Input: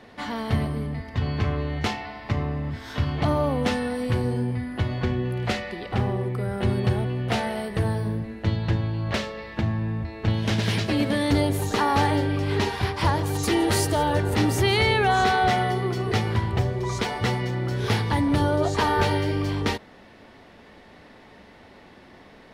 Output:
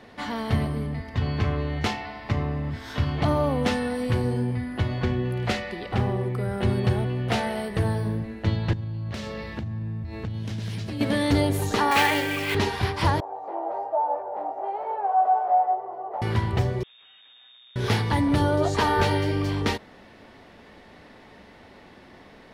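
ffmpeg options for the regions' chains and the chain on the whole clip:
ffmpeg -i in.wav -filter_complex "[0:a]asettb=1/sr,asplit=3[link_01][link_02][link_03];[link_01]atrim=end=8.734[link_04];[link_02]atrim=start=8.73:end=11.01,asetpts=PTS-STARTPTS,afade=type=in:duration=0.004:curve=qsin,afade=type=out:start_time=2.276:duration=0.004:curve=qsin,bass=frequency=250:gain=10,treble=frequency=4000:gain=5,acompressor=threshold=-28dB:ratio=8:attack=3.2:release=140:knee=1:detection=peak,highpass=62[link_05];[link_03]atrim=start=11.006[link_06];[link_04][link_05]acrossfade=duration=0.004:curve1=hsin:curve2=qsin[link_07];[link_07][link_06]acrossfade=duration=0.004:curve1=qsin:curve2=hsin,asettb=1/sr,asplit=3[link_08][link_09][link_10];[link_08]atrim=end=11.914[link_11];[link_09]atrim=start=11.91:end=12.55,asetpts=PTS-STARTPTS,afade=type=in:duration=0.004:curve=qsin,afade=type=out:start_time=0.636:duration=0.004:curve=qsin,highpass=frequency=370:poles=1,equalizer=frequency=2400:width=1.3:gain=12,acrusher=bits=3:mode=log:mix=0:aa=0.000001[link_12];[link_10]atrim=start=12.546[link_13];[link_11][link_12]acrossfade=duration=0.004:curve1=hsin:curve2=qsin[link_14];[link_14][link_13]acrossfade=duration=0.004:curve1=qsin:curve2=hsin,asettb=1/sr,asplit=3[link_15][link_16][link_17];[link_15]atrim=end=13.204[link_18];[link_16]atrim=start=13.2:end=16.22,asetpts=PTS-STARTPTS,afade=type=in:duration=0.004:curve=qsin,afade=type=out:start_time=3.016:duration=0.004:curve=qsin,aeval=exprs='0.266*sin(PI/2*1.78*val(0)/0.266)':channel_layout=same,asuperpass=centerf=720:order=4:qfactor=2.4,flanger=delay=17.5:depth=3.4:speed=1.1[link_19];[link_17]atrim=start=16.216[link_20];[link_18][link_19]acrossfade=duration=0.004:curve1=hsin:curve2=qsin[link_21];[link_21][link_20]acrossfade=duration=0.004:curve1=qsin:curve2=hsin,asettb=1/sr,asplit=3[link_22][link_23][link_24];[link_22]atrim=end=16.834[link_25];[link_23]atrim=start=16.83:end=17.76,asetpts=PTS-STARTPTS,afade=type=in:duration=0.004:curve=qsin,afade=type=out:start_time=0.926:duration=0.004:curve=qsin,aeval=exprs='(tanh(126*val(0)+0.65)-tanh(0.65))/126':channel_layout=same,aeval=exprs='max(val(0),0)':channel_layout=same,lowpass=frequency=3100:width_type=q:width=0.5098,lowpass=frequency=3100:width_type=q:width=0.6013,lowpass=frequency=3100:width_type=q:width=0.9,lowpass=frequency=3100:width_type=q:width=2.563,afreqshift=-3700[link_26];[link_24]atrim=start=17.756[link_27];[link_25][link_26]acrossfade=duration=0.004:curve1=hsin:curve2=qsin[link_28];[link_28][link_27]acrossfade=duration=0.004:curve1=qsin:curve2=hsin" out.wav

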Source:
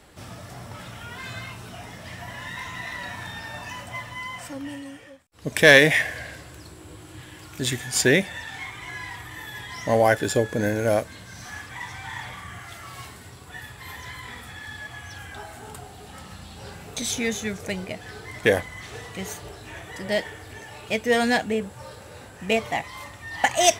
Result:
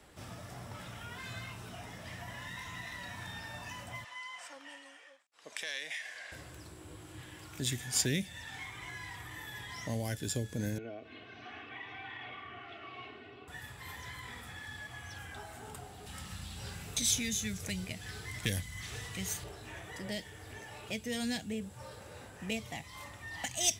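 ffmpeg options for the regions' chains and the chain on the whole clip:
ffmpeg -i in.wav -filter_complex "[0:a]asettb=1/sr,asplit=3[link_01][link_02][link_03];[link_01]atrim=end=4.044[link_04];[link_02]atrim=start=4.04:end=6.32,asetpts=PTS-STARTPTS,afade=type=in:duration=0.004:curve=qsin,afade=type=out:start_time=2.276:duration=0.004:curve=qsin,acompressor=threshold=-24dB:ratio=2.5:attack=3.2:release=140:knee=1:detection=peak,highpass=790,lowpass=7800[link_05];[link_03]atrim=start=6.316[link_06];[link_04][link_05]acrossfade=duration=0.004:curve1=hsin:curve2=qsin[link_07];[link_07][link_06]acrossfade=duration=0.004:curve1=qsin:curve2=hsin,asettb=1/sr,asplit=3[link_08][link_09][link_10];[link_08]atrim=end=10.784[link_11];[link_09]atrim=start=10.78:end=13.48,asetpts=PTS-STARTPTS,afade=type=in:duration=0.004:curve=qsin,afade=type=out:start_time=2.696:duration=0.004:curve=qsin,aecho=1:1:2.7:0.71,atrim=end_sample=119070,acompressor=threshold=-28dB:ratio=10:attack=3.2:release=140:knee=1:detection=peak,highpass=190,equalizer=frequency=230:width_type=q:width=4:gain=6,equalizer=frequency=400:width_type=q:width=4:gain=3,equalizer=frequency=620:width_type=q:width=4:gain=4,equalizer=frequency=940:width_type=q:width=4:gain=-7,equalizer=frequency=1700:width_type=q:width=4:gain=-6,equalizer=frequency=2700:width_type=q:width=4:gain=7,lowpass=frequency=3100:width=0.5412,lowpass=frequency=3100:width=1.3066[link_12];[link_10]atrim=start=13.476[link_13];[link_11][link_12]acrossfade=duration=0.004:curve1=hsin:curve2=qsin[link_14];[link_14][link_13]acrossfade=duration=0.004:curve1=qsin:curve2=hsin,asettb=1/sr,asplit=3[link_15][link_16][link_17];[link_15]atrim=end=16.064[link_18];[link_16]atrim=start=16.06:end=19.44,asetpts=PTS-STARTPTS,afade=type=in:duration=0.004:curve=qsin,afade=type=out:start_time=3.376:duration=0.004:curve=qsin,acontrast=72,equalizer=frequency=540:width_type=o:width=2.9:gain=-10.5[link_19];[link_17]atrim=start=19.436[link_20];[link_18][link_19]acrossfade=duration=0.004:curve1=hsin:curve2=qsin[link_21];[link_21][link_20]acrossfade=duration=0.004:curve1=qsin:curve2=hsin,bandreject=frequency=4300:width=27,acrossover=split=250|3000[link_22][link_23][link_24];[link_23]acompressor=threshold=-37dB:ratio=6[link_25];[link_22][link_25][link_24]amix=inputs=3:normalize=0,volume=-6.5dB" out.wav

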